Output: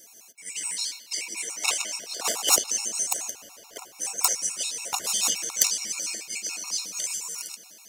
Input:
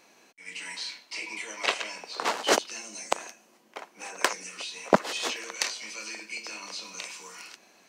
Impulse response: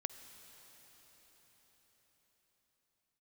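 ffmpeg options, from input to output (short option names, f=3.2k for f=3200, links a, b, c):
-filter_complex "[0:a]aeval=exprs='0.631*sin(PI/2*2.51*val(0)/0.631)':c=same,asplit=2[a][b];[1:a]atrim=start_sample=2205,lowpass=2.9k[c];[b][c]afir=irnorm=-1:irlink=0,volume=2.5dB[d];[a][d]amix=inputs=2:normalize=0,aexciter=amount=4.6:drive=8.3:freq=5.6k,highshelf=f=2.5k:t=q:w=1.5:g=9,afftfilt=real='re*gt(sin(2*PI*7*pts/sr)*(1-2*mod(floor(b*sr/1024/720),2)),0)':imag='im*gt(sin(2*PI*7*pts/sr)*(1-2*mod(floor(b*sr/1024/720),2)),0)':win_size=1024:overlap=0.75,volume=-17dB"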